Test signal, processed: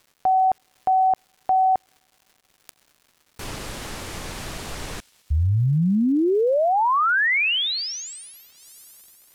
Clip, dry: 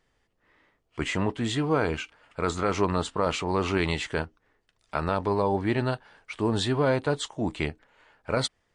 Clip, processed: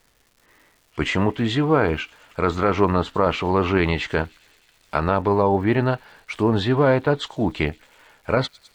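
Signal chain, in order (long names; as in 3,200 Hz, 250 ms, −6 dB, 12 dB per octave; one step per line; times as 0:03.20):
delay with a high-pass on its return 104 ms, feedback 77%, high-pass 2,900 Hz, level −24 dB
treble cut that deepens with the level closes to 2,800 Hz, closed at −23 dBFS
surface crackle 380 per second −52 dBFS
level +6.5 dB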